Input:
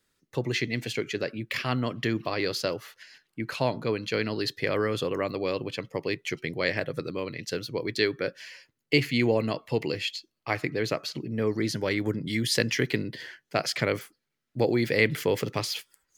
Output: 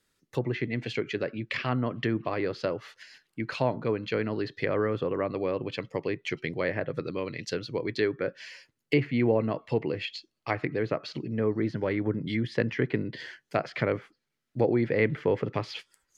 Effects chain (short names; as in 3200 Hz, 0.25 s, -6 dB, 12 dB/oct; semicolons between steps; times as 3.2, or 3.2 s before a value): treble ducked by the level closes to 1600 Hz, closed at -24.5 dBFS